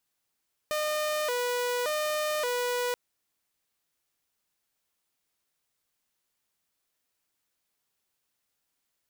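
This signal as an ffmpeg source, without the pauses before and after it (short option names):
-f lavfi -i "aevalsrc='0.0596*(2*mod((549*t+59/0.87*(0.5-abs(mod(0.87*t,1)-0.5))),1)-1)':d=2.23:s=44100"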